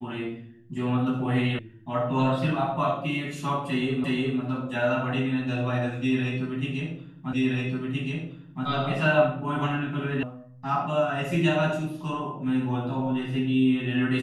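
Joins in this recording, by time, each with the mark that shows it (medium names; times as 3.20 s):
1.59 s: sound stops dead
4.04 s: repeat of the last 0.36 s
7.33 s: repeat of the last 1.32 s
10.23 s: sound stops dead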